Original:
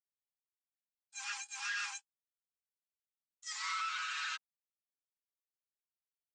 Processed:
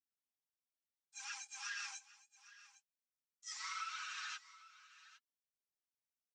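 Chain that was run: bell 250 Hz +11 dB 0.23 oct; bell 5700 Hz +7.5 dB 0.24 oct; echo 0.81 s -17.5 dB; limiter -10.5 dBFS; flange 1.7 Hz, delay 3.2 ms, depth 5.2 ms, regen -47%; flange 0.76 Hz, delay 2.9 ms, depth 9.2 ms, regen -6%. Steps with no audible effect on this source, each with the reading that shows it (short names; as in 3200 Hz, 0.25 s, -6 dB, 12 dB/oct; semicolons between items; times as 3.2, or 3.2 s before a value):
bell 250 Hz: input band starts at 760 Hz; limiter -10.5 dBFS: input peak -25.0 dBFS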